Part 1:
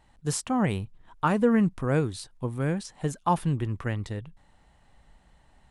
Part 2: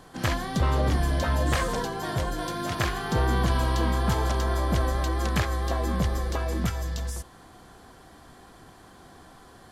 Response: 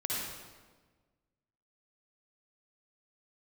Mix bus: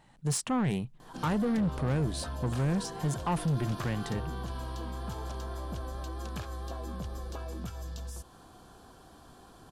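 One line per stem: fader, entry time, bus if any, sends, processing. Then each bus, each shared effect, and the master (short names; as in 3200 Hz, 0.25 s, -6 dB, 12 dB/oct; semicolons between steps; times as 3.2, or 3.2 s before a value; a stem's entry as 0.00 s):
+2.0 dB, 0.00 s, no send, resonant low shelf 110 Hz -6.5 dB, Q 3; limiter -19.5 dBFS, peak gain reduction 9.5 dB
-3.5 dB, 1.00 s, no send, bell 2000 Hz -13.5 dB 0.28 oct; compressor 2.5:1, threshold -35 dBFS, peak gain reduction 10.5 dB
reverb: off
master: soft clip -24 dBFS, distortion -12 dB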